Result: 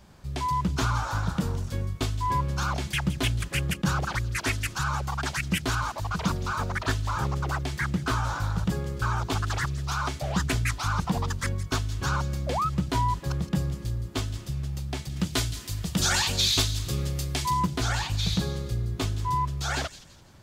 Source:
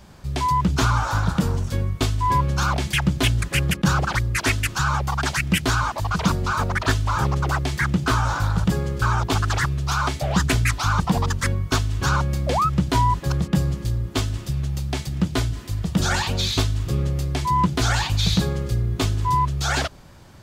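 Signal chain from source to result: 15.16–17.54 high shelf 2200 Hz +11 dB; thin delay 0.168 s, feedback 34%, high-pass 3600 Hz, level -10.5 dB; gain -6.5 dB

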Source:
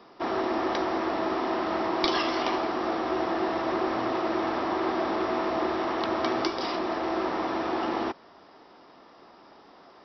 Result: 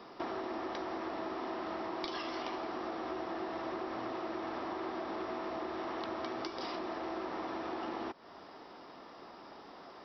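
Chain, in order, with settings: compressor 6:1, threshold -38 dBFS, peak gain reduction 16 dB; gain +1 dB

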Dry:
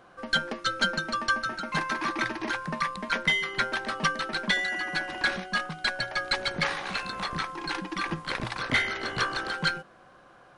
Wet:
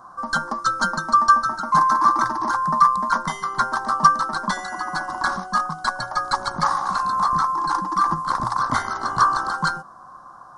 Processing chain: EQ curve 260 Hz 0 dB, 470 Hz -9 dB, 1100 Hz +15 dB, 2500 Hz -25 dB, 5200 Hz +3 dB; gain +4 dB

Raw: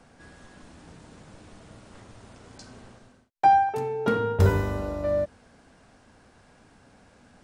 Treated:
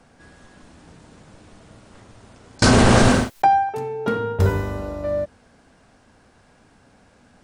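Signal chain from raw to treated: 2.62–3.47 fast leveller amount 100%; gain +1.5 dB

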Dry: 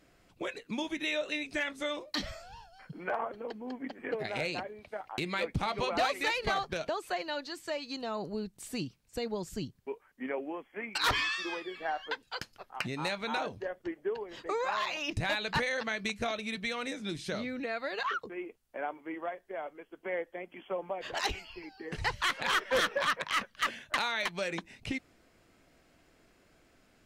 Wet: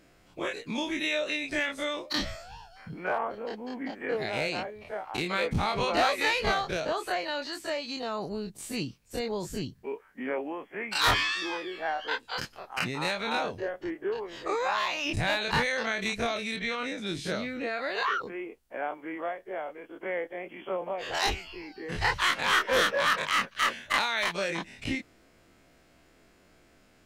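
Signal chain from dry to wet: spectral dilation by 60 ms; 16.56–16.98 bell 9900 Hz -12.5 dB 1.1 oct

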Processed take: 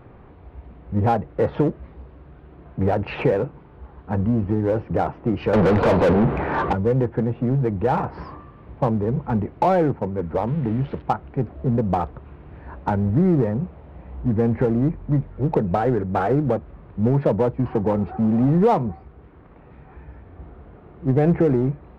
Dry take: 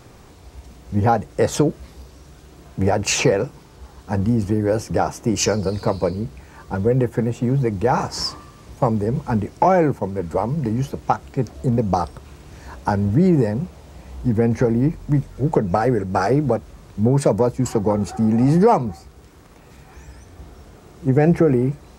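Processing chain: 10.47–11.02 switching spikes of -18 dBFS; Gaussian blur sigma 3.9 samples; in parallel at -4.5 dB: overloaded stage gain 20.5 dB; 5.53–6.73 on the sum: overdrive pedal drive 38 dB, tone 1000 Hz, clips at -4.5 dBFS; gain -4 dB

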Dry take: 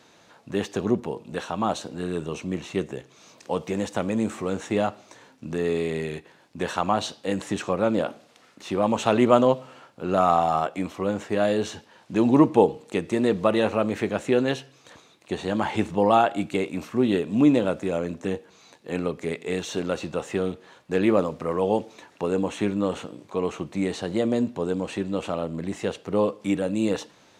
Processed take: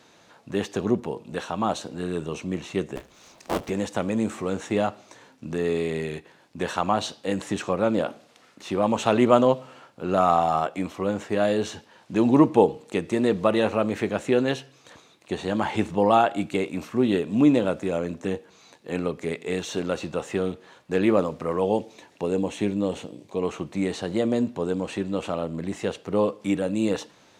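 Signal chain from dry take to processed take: 2.96–3.7 cycle switcher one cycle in 3, inverted; 21.65–23.41 bell 1300 Hz -5 dB -> -12 dB 0.79 oct

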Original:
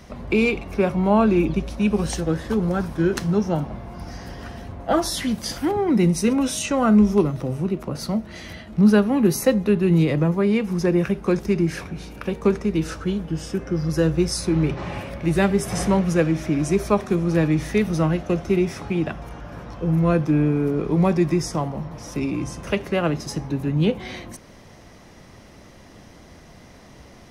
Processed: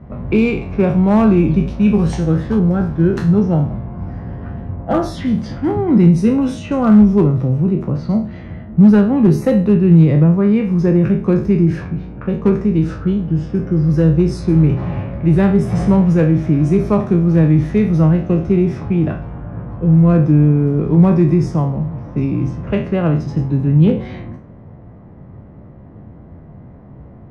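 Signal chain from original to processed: spectral trails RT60 0.42 s; LPF 2300 Hz 6 dB/oct, from 2.59 s 1300 Hz; hard clip -10.5 dBFS, distortion -24 dB; low-pass opened by the level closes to 1100 Hz, open at -18.5 dBFS; bell 120 Hz +11 dB 1.9 oct; gain +1 dB

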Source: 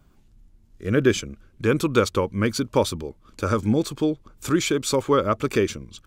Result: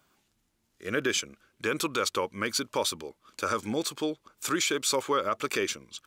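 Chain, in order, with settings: HPF 1100 Hz 6 dB/oct; limiter -18 dBFS, peak gain reduction 7.5 dB; gain +2 dB

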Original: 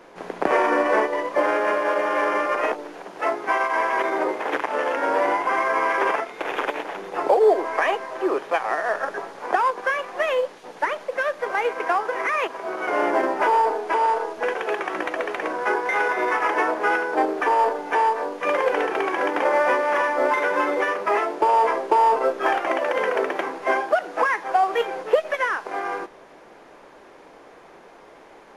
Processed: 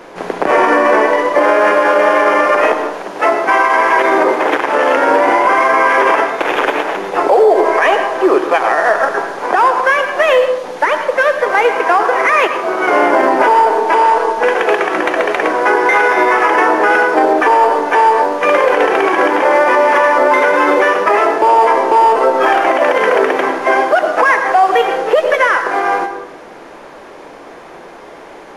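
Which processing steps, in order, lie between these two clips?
reverb RT60 0.70 s, pre-delay 88 ms, DRR 8.5 dB; maximiser +13 dB; gain -1 dB

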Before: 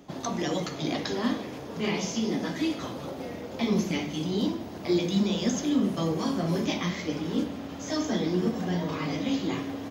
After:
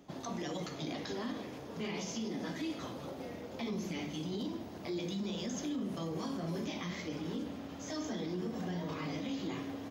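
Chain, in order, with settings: limiter -23 dBFS, peak gain reduction 8.5 dB; gain -7 dB

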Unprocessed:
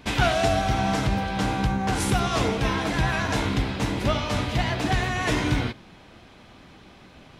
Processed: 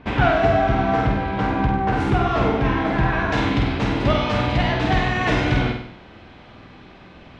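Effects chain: LPF 2000 Hz 12 dB/oct, from 3.32 s 3500 Hz; flutter echo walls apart 8.4 m, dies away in 0.62 s; gain +3.5 dB

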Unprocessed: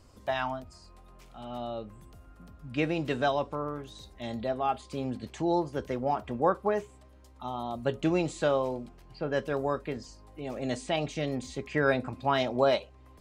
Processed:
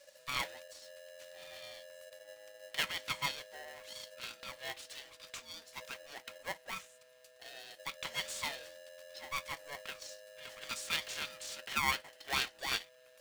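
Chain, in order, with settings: inverse Chebyshev band-stop 100–840 Hz, stop band 40 dB; polarity switched at an audio rate 570 Hz; gain +2 dB

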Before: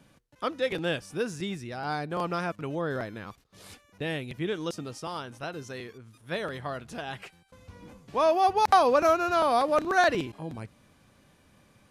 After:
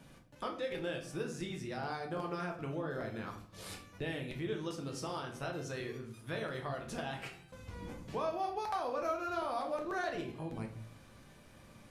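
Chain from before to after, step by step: compressor 4:1, threshold -40 dBFS, peak gain reduction 20 dB; shoebox room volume 69 m³, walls mixed, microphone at 0.63 m

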